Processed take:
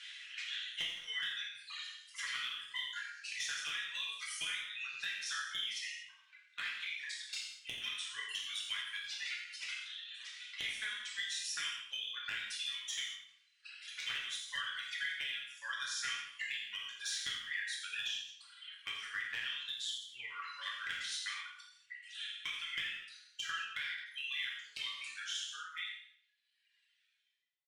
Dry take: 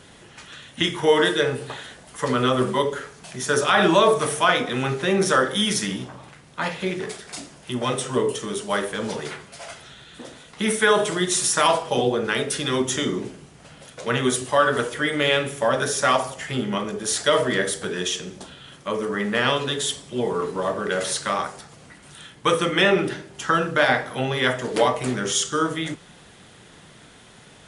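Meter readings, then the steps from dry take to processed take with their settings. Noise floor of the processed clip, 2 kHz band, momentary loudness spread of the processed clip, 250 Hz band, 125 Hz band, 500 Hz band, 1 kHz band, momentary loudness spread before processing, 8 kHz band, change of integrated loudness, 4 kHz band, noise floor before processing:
-75 dBFS, -13.5 dB, 8 LU, under -40 dB, under -40 dB, under -40 dB, -27.0 dB, 17 LU, -17.5 dB, -17.0 dB, -10.5 dB, -49 dBFS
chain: ending faded out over 6.78 s; inverse Chebyshev high-pass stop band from 790 Hz, stop band 50 dB; reverb removal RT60 1.5 s; LPF 3500 Hz 12 dB/oct; reverb removal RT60 1.9 s; compressor 20:1, threshold -45 dBFS, peak gain reduction 24 dB; flange 1.1 Hz, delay 0.5 ms, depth 4.5 ms, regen -60%; one-sided clip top -43.5 dBFS; feedback echo 85 ms, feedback 37%, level -12 dB; non-linear reverb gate 0.27 s falling, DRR -3 dB; ending taper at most 100 dB/s; gain +9 dB

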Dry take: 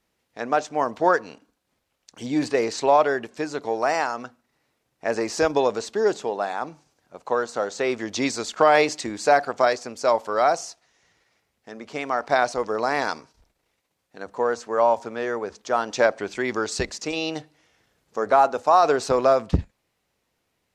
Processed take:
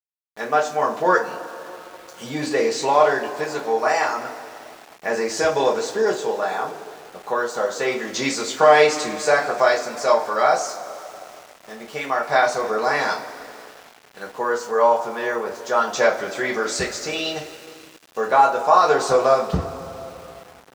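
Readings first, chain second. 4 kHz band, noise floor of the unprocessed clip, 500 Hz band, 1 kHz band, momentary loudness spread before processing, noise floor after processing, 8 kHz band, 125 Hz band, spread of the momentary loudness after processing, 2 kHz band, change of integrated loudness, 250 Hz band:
+4.5 dB, -75 dBFS, +2.5 dB, +3.0 dB, 12 LU, -49 dBFS, +4.5 dB, -0.5 dB, 20 LU, +4.5 dB, +2.5 dB, -1.0 dB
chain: two-slope reverb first 0.25 s, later 3.7 s, from -22 dB, DRR -4 dB; sample gate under -39 dBFS; low shelf 110 Hz -12 dB; gain -1.5 dB

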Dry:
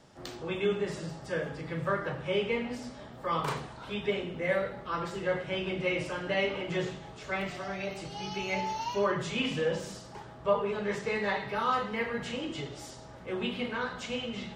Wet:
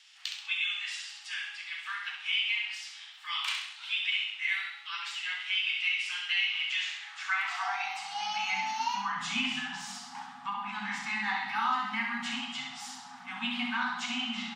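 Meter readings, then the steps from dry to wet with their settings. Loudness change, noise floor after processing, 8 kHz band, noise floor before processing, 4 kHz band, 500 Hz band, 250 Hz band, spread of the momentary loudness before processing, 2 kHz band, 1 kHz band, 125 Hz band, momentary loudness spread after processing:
+1.0 dB, -49 dBFS, +4.0 dB, -48 dBFS, +8.0 dB, under -25 dB, -6.5 dB, 9 LU, +5.0 dB, +0.5 dB, -17.5 dB, 10 LU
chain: high-pass sweep 2700 Hz -> 260 Hz, 6.76–8.65; weighting filter A; compressor, threshold -30 dBFS, peak gain reduction 9 dB; FFT band-reject 260–710 Hz; on a send: feedback echo 66 ms, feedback 41%, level -6 dB; on the sum: gain +3.5 dB

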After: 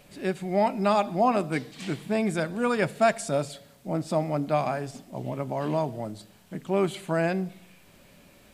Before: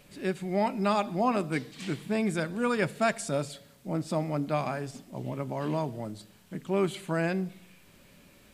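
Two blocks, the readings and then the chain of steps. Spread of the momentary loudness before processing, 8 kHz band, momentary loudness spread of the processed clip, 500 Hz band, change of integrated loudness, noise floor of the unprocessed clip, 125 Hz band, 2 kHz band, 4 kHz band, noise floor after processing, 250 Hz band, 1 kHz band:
12 LU, +1.5 dB, 14 LU, +4.0 dB, +3.0 dB, -58 dBFS, +1.5 dB, +1.5 dB, +1.5 dB, -56 dBFS, +1.5 dB, +4.5 dB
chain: bell 700 Hz +5 dB 0.62 oct; gain +1.5 dB

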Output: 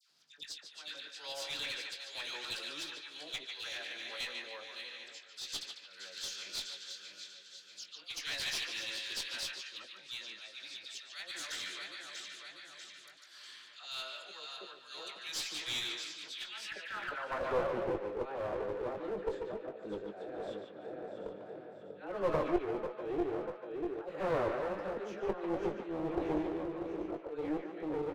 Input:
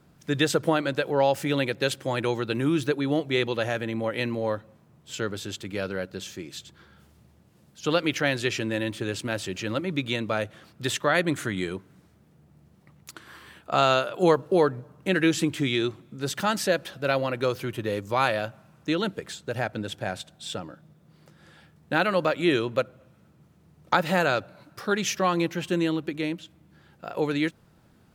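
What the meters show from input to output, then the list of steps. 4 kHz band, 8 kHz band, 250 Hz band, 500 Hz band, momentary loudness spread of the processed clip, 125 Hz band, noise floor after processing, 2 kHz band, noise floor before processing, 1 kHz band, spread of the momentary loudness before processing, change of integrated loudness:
-6.0 dB, -8.5 dB, -14.0 dB, -11.5 dB, 13 LU, -20.0 dB, -56 dBFS, -13.0 dB, -59 dBFS, -14.0 dB, 13 LU, -12.5 dB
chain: regenerating reverse delay 0.321 s, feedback 69%, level -10 dB; HPF 93 Hz 12 dB/oct; dynamic EQ 120 Hz, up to -4 dB, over -41 dBFS, Q 1.1; in parallel at -1 dB: compressor 4:1, threshold -35 dBFS, peak gain reduction 17 dB; on the sum: auto swell 0.347 s; band-pass sweep 4700 Hz -> 430 Hz, 16.18–17.79; dispersion lows, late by 0.1 s, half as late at 1400 Hz; one-sided clip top -38.5 dBFS; doubler 20 ms -8.5 dB; on a send: narrowing echo 0.146 s, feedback 44%, band-pass 1900 Hz, level -3 dB

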